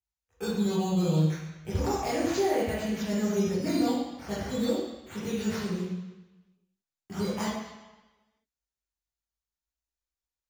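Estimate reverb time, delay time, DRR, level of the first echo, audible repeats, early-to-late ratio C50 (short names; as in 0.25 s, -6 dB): 1.1 s, none, -10.0 dB, none, none, -1.0 dB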